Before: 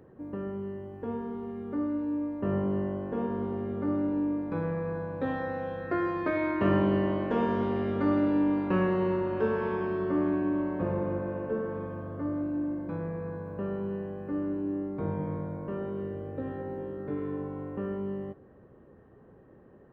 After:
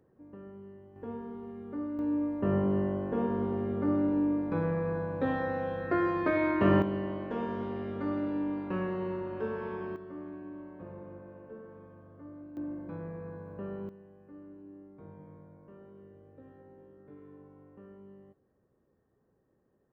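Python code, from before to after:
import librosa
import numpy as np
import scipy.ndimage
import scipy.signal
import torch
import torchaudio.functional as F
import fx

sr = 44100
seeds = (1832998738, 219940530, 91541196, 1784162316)

y = fx.gain(x, sr, db=fx.steps((0.0, -12.0), (0.96, -5.5), (1.99, 1.0), (6.82, -7.0), (9.96, -15.5), (12.57, -6.0), (13.89, -18.0)))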